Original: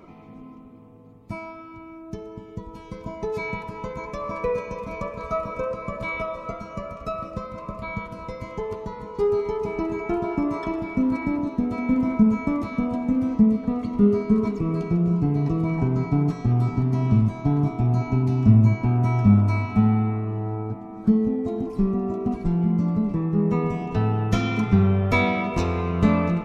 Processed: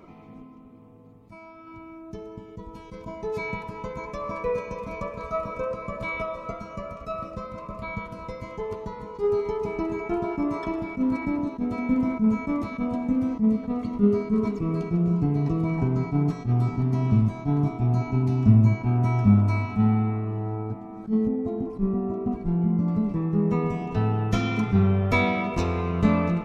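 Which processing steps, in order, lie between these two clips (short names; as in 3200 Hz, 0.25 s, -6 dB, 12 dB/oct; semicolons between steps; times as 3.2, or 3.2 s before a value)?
0.42–1.67 compressor 2.5:1, threshold -43 dBFS, peak gain reduction 10.5 dB; 21.27–22.88 high shelf 2600 Hz -12 dB; attack slew limiter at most 260 dB/s; gain -1.5 dB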